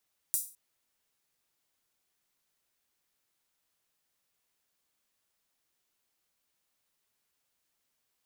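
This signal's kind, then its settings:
open synth hi-hat length 0.21 s, high-pass 8,600 Hz, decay 0.36 s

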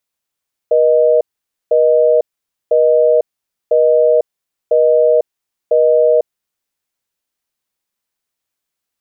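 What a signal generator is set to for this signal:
call progress tone busy tone, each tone −10.5 dBFS 5.81 s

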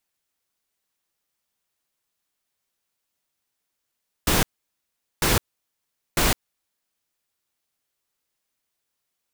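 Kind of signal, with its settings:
noise bursts pink, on 0.16 s, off 0.79 s, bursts 3, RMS −19.5 dBFS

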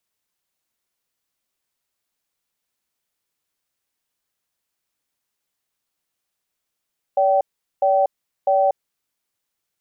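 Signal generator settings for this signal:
tone pair in a cadence 572 Hz, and 772 Hz, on 0.24 s, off 0.41 s, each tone −16.5 dBFS 1.75 s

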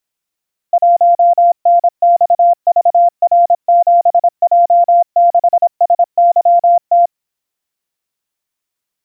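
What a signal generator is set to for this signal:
Morse code "1NXVR7J6SYT" 26 words per minute 693 Hz −5 dBFS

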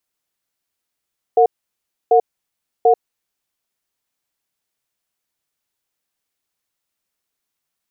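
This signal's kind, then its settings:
tone pair in a cadence 458 Hz, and 726 Hz, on 0.09 s, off 0.65 s, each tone −11 dBFS 2.18 s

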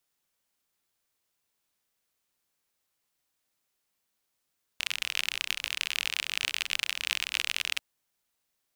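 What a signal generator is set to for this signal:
rain-like ticks over hiss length 2.99 s, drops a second 45, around 2,700 Hz, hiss −28 dB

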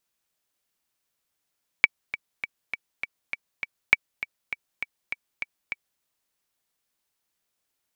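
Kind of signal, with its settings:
click track 201 BPM, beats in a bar 7, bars 2, 2,290 Hz, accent 14.5 dB −1.5 dBFS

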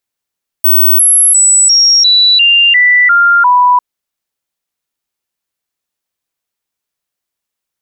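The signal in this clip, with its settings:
stepped sweep 15,800 Hz down, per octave 2, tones 9, 0.35 s, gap 0.00 s −4 dBFS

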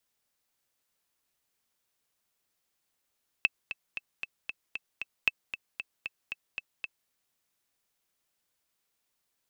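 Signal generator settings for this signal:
click track 230 BPM, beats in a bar 7, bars 2, 2,630 Hz, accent 12 dB −9.5 dBFS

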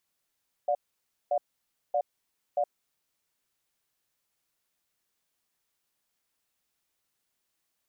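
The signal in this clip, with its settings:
tone pair in a cadence 586 Hz, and 717 Hz, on 0.07 s, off 0.56 s, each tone −26 dBFS 2.17 s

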